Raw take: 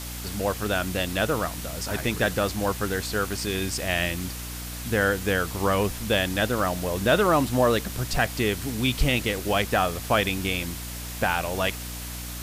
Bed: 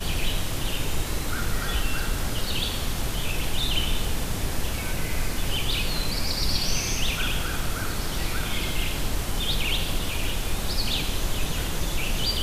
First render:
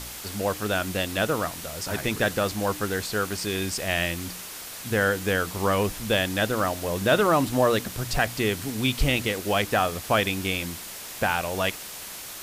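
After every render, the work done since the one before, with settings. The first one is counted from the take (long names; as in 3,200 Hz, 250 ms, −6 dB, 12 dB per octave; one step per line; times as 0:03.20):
hum removal 60 Hz, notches 5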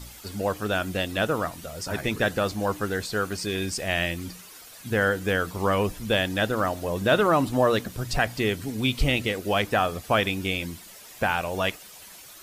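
broadband denoise 11 dB, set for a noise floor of −39 dBFS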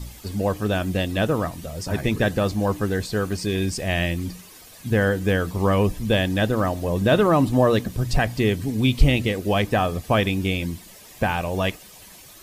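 low-shelf EQ 350 Hz +9 dB
notch filter 1,400 Hz, Q 9.1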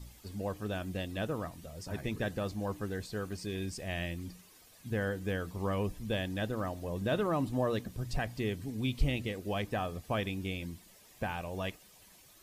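level −13.5 dB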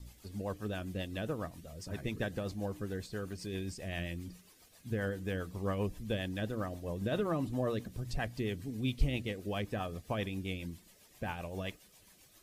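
rotating-speaker cabinet horn 7.5 Hz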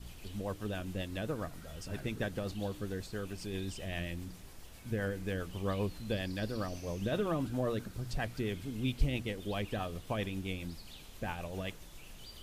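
mix in bed −25.5 dB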